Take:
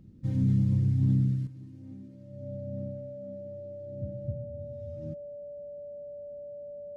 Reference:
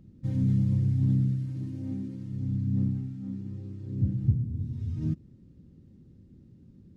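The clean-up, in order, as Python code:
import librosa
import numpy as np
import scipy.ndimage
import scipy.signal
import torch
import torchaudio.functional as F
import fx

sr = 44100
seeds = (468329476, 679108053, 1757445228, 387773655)

y = fx.notch(x, sr, hz=580.0, q=30.0)
y = fx.fix_level(y, sr, at_s=1.47, step_db=11.0)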